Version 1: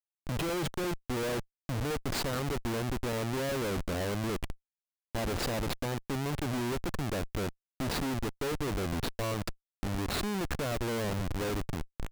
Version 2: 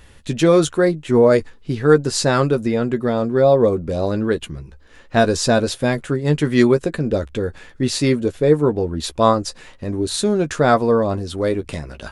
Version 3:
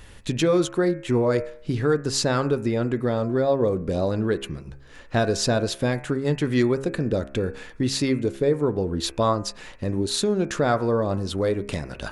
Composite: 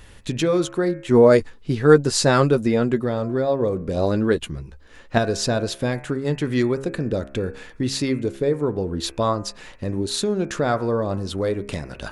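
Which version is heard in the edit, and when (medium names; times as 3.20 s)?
3
1.11–3.04 s: from 2
3.97–5.18 s: from 2
not used: 1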